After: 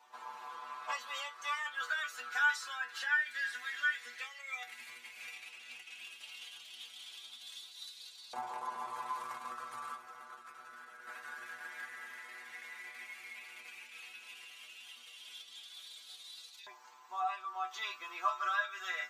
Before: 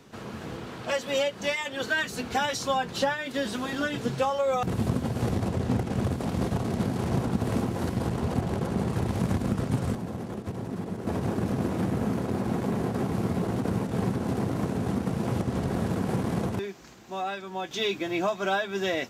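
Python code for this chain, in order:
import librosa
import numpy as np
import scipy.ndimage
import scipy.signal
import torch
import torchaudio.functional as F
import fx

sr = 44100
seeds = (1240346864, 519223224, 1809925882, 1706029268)

y = fx.stiff_resonator(x, sr, f0_hz=120.0, decay_s=0.25, stiffness=0.002)
y = fx.filter_lfo_highpass(y, sr, shape='saw_up', hz=0.12, low_hz=910.0, high_hz=4100.0, q=6.3)
y = y * librosa.db_to_amplitude(-1.0)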